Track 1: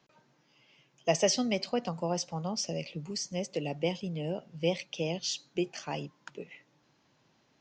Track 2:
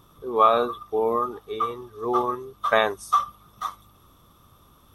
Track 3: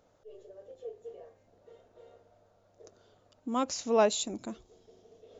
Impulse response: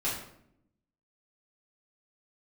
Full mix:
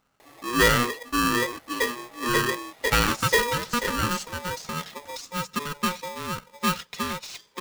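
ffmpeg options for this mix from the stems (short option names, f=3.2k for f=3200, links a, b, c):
-filter_complex "[0:a]deesser=1,equalizer=f=260:t=o:w=0.33:g=-6.5,aecho=1:1:3.8:0.83,adelay=2000,volume=1.5dB[a];[1:a]asoftclip=type=tanh:threshold=-11.5dB,adelay=200,volume=0.5dB[b];[2:a]volume=-4dB[c];[a][b][c]amix=inputs=3:normalize=0,aeval=exprs='val(0)*sgn(sin(2*PI*720*n/s))':c=same"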